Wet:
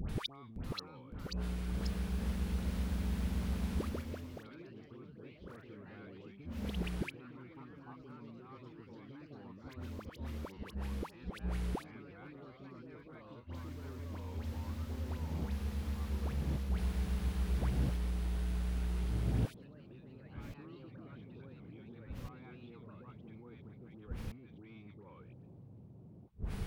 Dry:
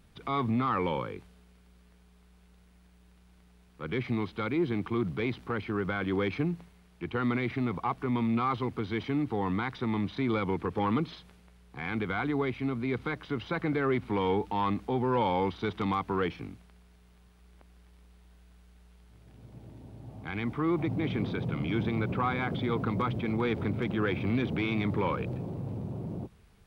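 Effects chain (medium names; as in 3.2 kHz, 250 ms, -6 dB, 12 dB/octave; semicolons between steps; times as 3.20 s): bass shelf 370 Hz +7 dB; compression, threshold -28 dBFS, peak gain reduction 9.5 dB; inverted gate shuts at -37 dBFS, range -38 dB; phase dispersion highs, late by 94 ms, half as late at 1.2 kHz; ever faster or slower copies 561 ms, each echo +2 st, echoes 3; trim +15.5 dB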